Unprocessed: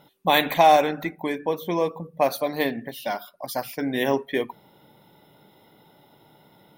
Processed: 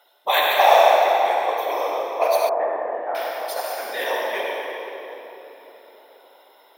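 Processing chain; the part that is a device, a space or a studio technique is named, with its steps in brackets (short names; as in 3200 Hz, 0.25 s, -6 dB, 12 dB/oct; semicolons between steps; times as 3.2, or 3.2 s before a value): whispering ghost (whisperiser; HPF 540 Hz 24 dB/oct; reverb RT60 3.8 s, pre-delay 52 ms, DRR -3.5 dB); 2.49–3.15 LPF 1400 Hz 24 dB/oct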